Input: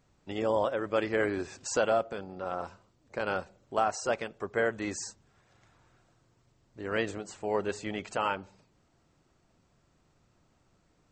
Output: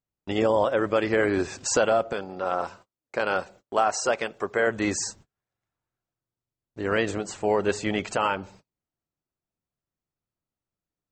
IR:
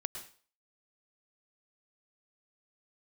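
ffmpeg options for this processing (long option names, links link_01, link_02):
-filter_complex "[0:a]asettb=1/sr,asplit=3[link_01][link_02][link_03];[link_01]atrim=end=2.134[link_04];[link_02]atrim=start=2.13:end=4.67,asetpts=PTS-STARTPTS,afade=type=in:duration=0.004:curve=qsin,afade=type=out:start_time=2.536:duration=0.004:curve=qsin,lowshelf=frequency=200:gain=-10.5[link_05];[link_03]atrim=start=4.666[link_06];[link_04][link_05]acrossfade=duration=0.004:curve1=hsin:curve2=qsin[link_07];[link_07][link_06]acrossfade=duration=0.004:curve1=qsin:curve2=hsin,agate=range=-33dB:threshold=-56dB:ratio=16:detection=peak,alimiter=limit=-20.5dB:level=0:latency=1:release=138,volume=9dB"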